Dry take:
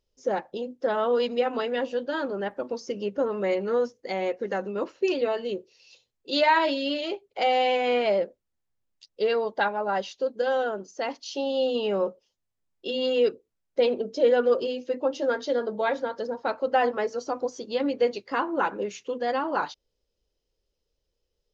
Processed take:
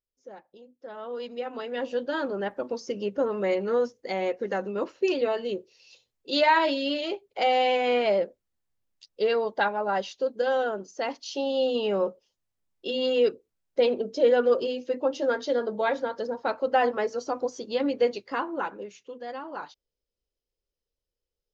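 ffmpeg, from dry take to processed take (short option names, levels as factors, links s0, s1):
-af "afade=t=in:st=0.78:d=0.89:silence=0.266073,afade=t=in:st=1.67:d=0.29:silence=0.473151,afade=t=out:st=18.05:d=0.86:silence=0.316228"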